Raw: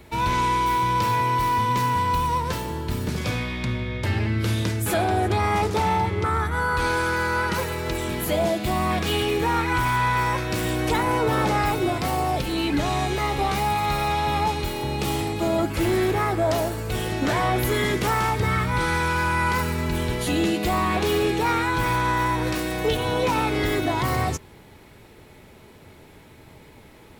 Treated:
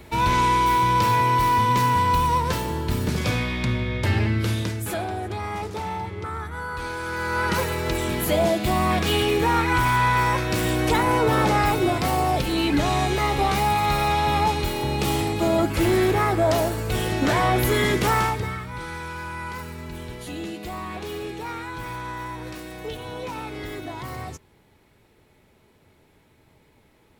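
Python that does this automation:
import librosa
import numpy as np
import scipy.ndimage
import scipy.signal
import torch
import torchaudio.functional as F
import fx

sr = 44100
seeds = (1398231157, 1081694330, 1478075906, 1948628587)

y = fx.gain(x, sr, db=fx.line((4.22, 2.5), (5.2, -8.0), (6.98, -8.0), (7.52, 2.0), (18.2, 2.0), (18.62, -10.5)))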